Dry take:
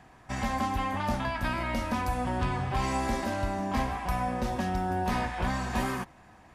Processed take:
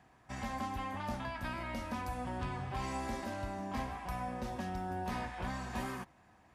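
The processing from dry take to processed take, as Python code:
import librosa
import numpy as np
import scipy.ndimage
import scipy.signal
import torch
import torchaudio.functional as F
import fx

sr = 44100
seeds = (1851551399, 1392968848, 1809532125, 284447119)

y = scipy.signal.sosfilt(scipy.signal.butter(2, 43.0, 'highpass', fs=sr, output='sos'), x)
y = y * librosa.db_to_amplitude(-9.0)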